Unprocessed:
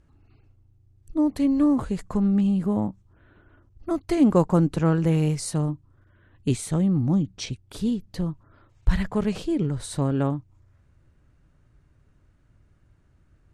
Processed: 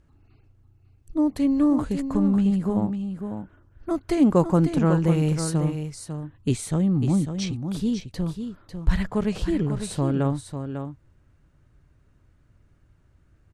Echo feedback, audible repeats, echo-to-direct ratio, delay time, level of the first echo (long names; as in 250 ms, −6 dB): repeats not evenly spaced, 1, −8.0 dB, 548 ms, −8.0 dB